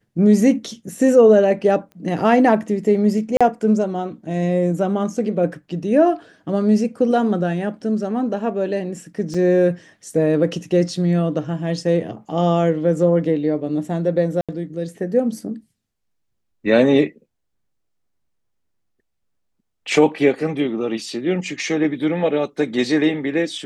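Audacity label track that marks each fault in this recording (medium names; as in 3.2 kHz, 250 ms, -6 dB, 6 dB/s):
1.920000	1.920000	pop -29 dBFS
3.370000	3.410000	dropout 36 ms
9.340000	9.350000	dropout 5.2 ms
14.410000	14.490000	dropout 76 ms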